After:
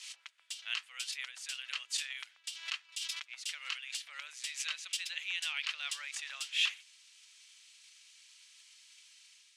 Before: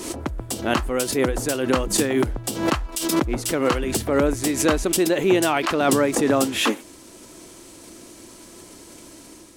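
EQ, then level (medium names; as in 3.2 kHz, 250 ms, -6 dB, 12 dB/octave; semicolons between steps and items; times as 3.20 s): ladder high-pass 2.2 kHz, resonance 35%; distance through air 83 m; 0.0 dB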